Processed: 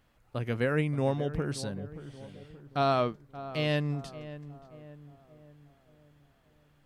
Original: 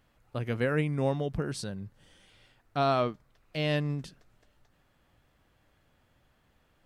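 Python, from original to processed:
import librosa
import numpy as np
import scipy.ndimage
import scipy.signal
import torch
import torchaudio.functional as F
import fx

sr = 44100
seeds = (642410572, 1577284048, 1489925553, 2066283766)

y = fx.echo_filtered(x, sr, ms=577, feedback_pct=50, hz=1400.0, wet_db=-13.5)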